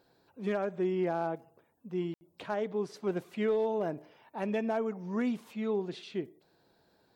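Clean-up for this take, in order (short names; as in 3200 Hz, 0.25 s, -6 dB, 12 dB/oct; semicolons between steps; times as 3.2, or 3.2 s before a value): clip repair -22.5 dBFS; room tone fill 2.14–2.21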